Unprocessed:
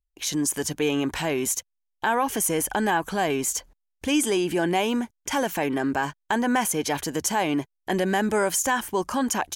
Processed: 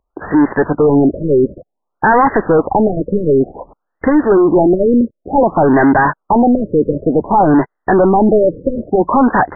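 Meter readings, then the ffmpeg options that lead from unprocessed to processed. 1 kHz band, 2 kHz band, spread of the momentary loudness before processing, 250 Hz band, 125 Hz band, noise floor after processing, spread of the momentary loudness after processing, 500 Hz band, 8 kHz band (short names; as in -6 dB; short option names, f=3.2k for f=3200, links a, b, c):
+12.5 dB, +7.5 dB, 6 LU, +14.0 dB, +14.0 dB, -74 dBFS, 6 LU, +15.0 dB, under -40 dB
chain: -filter_complex "[0:a]asplit=2[a][b];[b]highpass=f=720:p=1,volume=28dB,asoftclip=type=tanh:threshold=-10.5dB[c];[a][c]amix=inputs=2:normalize=0,lowpass=f=1.4k:p=1,volume=-6dB,afftfilt=real='re*lt(b*sr/1024,570*pow(2100/570,0.5+0.5*sin(2*PI*0.55*pts/sr)))':imag='im*lt(b*sr/1024,570*pow(2100/570,0.5+0.5*sin(2*PI*0.55*pts/sr)))':win_size=1024:overlap=0.75,volume=9dB"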